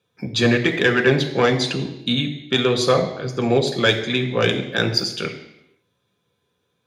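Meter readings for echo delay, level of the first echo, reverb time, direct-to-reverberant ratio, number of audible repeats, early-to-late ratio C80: no echo audible, no echo audible, 0.85 s, 3.5 dB, no echo audible, 11.5 dB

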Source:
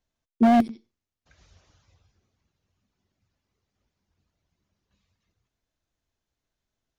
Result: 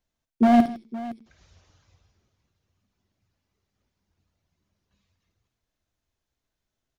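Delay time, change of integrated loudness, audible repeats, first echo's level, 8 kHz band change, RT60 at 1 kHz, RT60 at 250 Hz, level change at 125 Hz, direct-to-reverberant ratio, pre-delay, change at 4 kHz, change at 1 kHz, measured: 55 ms, +0.5 dB, 3, −10.0 dB, can't be measured, no reverb audible, no reverb audible, +0.5 dB, no reverb audible, no reverb audible, +0.5 dB, +1.0 dB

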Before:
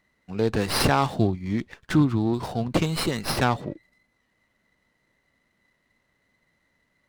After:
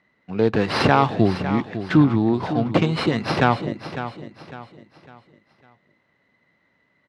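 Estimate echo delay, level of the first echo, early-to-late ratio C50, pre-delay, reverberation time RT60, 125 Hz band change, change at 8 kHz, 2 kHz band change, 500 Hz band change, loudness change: 553 ms, −11.5 dB, no reverb audible, no reverb audible, no reverb audible, +3.5 dB, below −10 dB, +5.0 dB, +5.5 dB, +4.0 dB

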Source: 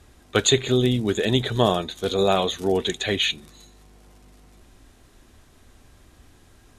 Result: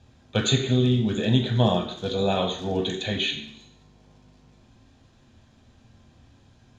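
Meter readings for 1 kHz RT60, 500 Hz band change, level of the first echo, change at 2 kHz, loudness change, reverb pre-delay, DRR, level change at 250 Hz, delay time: 0.70 s, −4.5 dB, no echo audible, −4.5 dB, −2.0 dB, 3 ms, 1.5 dB, +0.5 dB, no echo audible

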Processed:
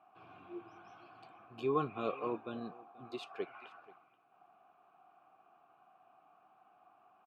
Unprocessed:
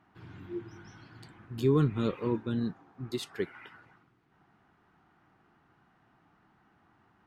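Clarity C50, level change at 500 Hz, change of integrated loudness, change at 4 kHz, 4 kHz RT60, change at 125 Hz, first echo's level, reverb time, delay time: no reverb audible, −5.5 dB, −8.0 dB, −8.5 dB, no reverb audible, −18.0 dB, −22.0 dB, no reverb audible, 482 ms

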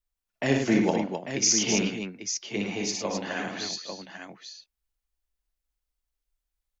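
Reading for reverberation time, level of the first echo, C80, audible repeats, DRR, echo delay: no reverb audible, −4.5 dB, no reverb audible, 4, no reverb audible, 59 ms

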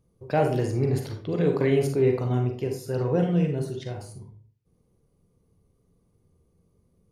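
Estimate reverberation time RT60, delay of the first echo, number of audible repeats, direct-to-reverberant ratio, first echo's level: 0.50 s, no echo audible, no echo audible, 3.0 dB, no echo audible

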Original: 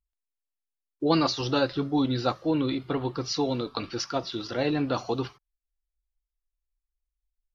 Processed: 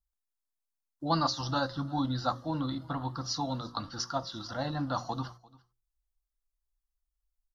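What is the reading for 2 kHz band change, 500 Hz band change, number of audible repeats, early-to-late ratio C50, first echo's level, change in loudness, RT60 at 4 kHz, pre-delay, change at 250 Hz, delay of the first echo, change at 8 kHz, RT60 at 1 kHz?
−5.5 dB, −10.0 dB, 1, no reverb audible, −23.5 dB, −5.5 dB, no reverb audible, no reverb audible, −7.5 dB, 345 ms, can't be measured, no reverb audible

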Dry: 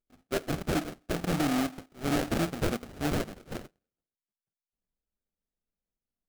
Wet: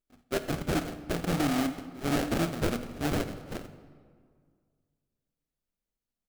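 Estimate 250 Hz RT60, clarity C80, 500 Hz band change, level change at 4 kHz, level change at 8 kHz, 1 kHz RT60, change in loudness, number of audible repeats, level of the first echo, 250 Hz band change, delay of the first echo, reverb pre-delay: 2.2 s, 13.0 dB, +0.5 dB, +0.5 dB, 0.0 dB, 1.9 s, 0.0 dB, 1, −20.0 dB, +0.5 dB, 83 ms, 19 ms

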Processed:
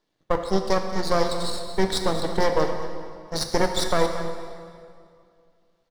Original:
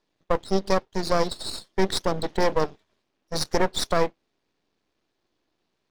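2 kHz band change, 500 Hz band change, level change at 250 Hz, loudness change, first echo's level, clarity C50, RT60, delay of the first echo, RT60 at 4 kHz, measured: +1.0 dB, +1.0 dB, +1.0 dB, +1.0 dB, −13.5 dB, 5.5 dB, 2.3 s, 224 ms, 1.8 s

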